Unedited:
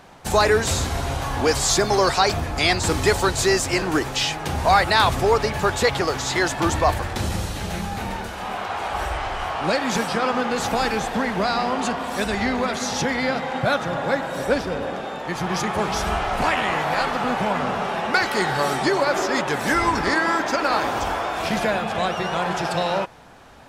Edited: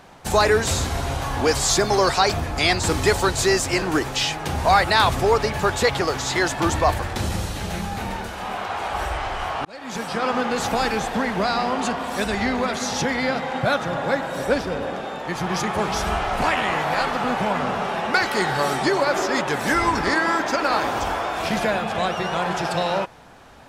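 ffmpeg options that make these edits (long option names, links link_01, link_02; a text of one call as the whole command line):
ffmpeg -i in.wav -filter_complex "[0:a]asplit=2[link_01][link_02];[link_01]atrim=end=9.65,asetpts=PTS-STARTPTS,afade=type=out:start_time=9.646:duration=0.004:curve=hsin[link_03];[link_02]atrim=start=9.65,asetpts=PTS-STARTPTS,afade=type=in:duration=0.68[link_04];[link_03][link_04]concat=n=2:v=0:a=1" out.wav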